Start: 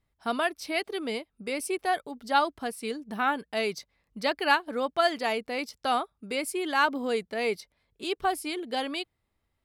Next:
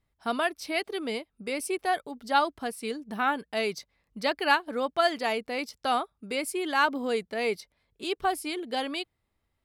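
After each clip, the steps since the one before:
no processing that can be heard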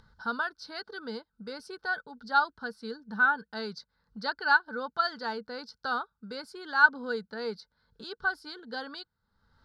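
drawn EQ curve 110 Hz 0 dB, 210 Hz +5 dB, 340 Hz −14 dB, 910 Hz −7 dB, 1,400 Hz +7 dB, 2,400 Hz −18 dB, 4,400 Hz +7 dB, 7,800 Hz −15 dB, 14,000 Hz −21 dB
upward compression, threshold −38 dBFS
hollow resonant body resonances 470/880/1,500 Hz, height 14 dB, ringing for 30 ms
level −6.5 dB

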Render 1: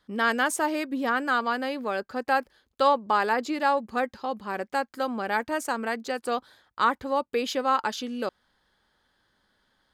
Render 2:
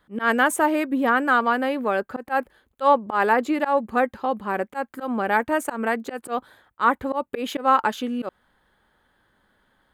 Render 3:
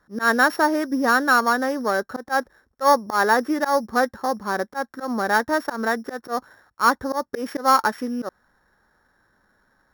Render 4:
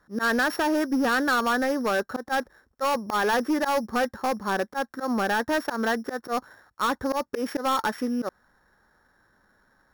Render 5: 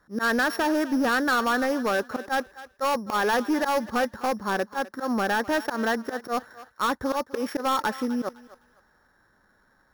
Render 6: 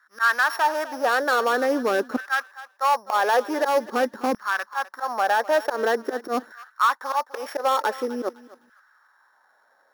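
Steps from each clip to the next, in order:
parametric band 5,100 Hz −15 dB 0.96 octaves; volume swells 113 ms; level +6.5 dB
samples sorted by size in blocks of 8 samples; high shelf with overshoot 2,100 Hz −6.5 dB, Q 3
brickwall limiter −10.5 dBFS, peak gain reduction 6.5 dB; hard clipping −19.5 dBFS, distortion −10 dB
feedback echo with a high-pass in the loop 255 ms, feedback 29%, high-pass 580 Hz, level −15.5 dB
auto-filter high-pass saw down 0.46 Hz 250–1,500 Hz

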